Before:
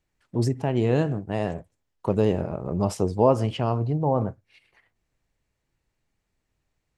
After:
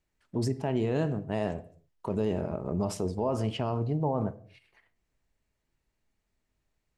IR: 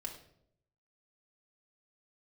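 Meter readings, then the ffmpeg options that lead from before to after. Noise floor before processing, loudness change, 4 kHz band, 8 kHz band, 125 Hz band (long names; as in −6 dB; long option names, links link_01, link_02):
−79 dBFS, −6.0 dB, −3.5 dB, −3.0 dB, −6.5 dB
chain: -filter_complex "[0:a]alimiter=limit=-15.5dB:level=0:latency=1:release=29,asplit=2[link_01][link_02];[1:a]atrim=start_sample=2205,afade=type=out:start_time=0.33:duration=0.01,atrim=end_sample=14994[link_03];[link_02][link_03]afir=irnorm=-1:irlink=0,volume=-7dB[link_04];[link_01][link_04]amix=inputs=2:normalize=0,volume=-5dB"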